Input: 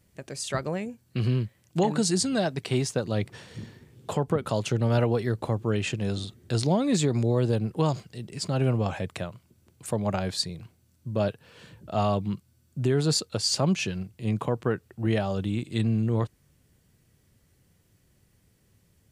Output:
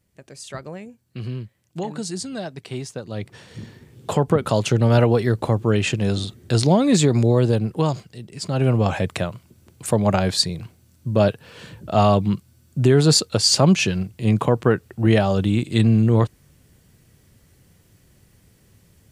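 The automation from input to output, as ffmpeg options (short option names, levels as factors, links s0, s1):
-af "volume=7.08,afade=t=in:st=3.06:d=1.14:silence=0.251189,afade=t=out:st=7.26:d=1.06:silence=0.398107,afade=t=in:st=8.32:d=0.65:silence=0.334965"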